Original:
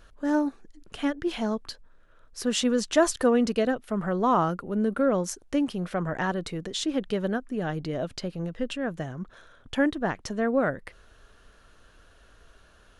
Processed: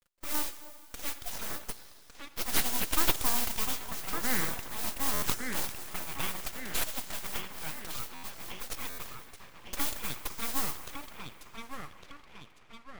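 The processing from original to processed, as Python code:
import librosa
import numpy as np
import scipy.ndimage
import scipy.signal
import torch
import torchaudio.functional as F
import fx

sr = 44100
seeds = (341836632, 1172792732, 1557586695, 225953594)

y = np.sign(x) * np.maximum(np.abs(x) - 10.0 ** (-45.5 / 20.0), 0.0)
y = fx.low_shelf(y, sr, hz=410.0, db=-5.5)
y = fx.env_flanger(y, sr, rest_ms=5.7, full_db=-23.5)
y = fx.mod_noise(y, sr, seeds[0], snr_db=20)
y = fx.riaa(y, sr, side='recording')
y = fx.echo_banded(y, sr, ms=1156, feedback_pct=58, hz=1100.0, wet_db=-4.5)
y = fx.rev_plate(y, sr, seeds[1], rt60_s=2.7, hf_ratio=0.8, predelay_ms=0, drr_db=10.5)
y = np.abs(y)
y = fx.buffer_glitch(y, sr, at_s=(5.13, 8.14, 8.89), block=512, repeats=7)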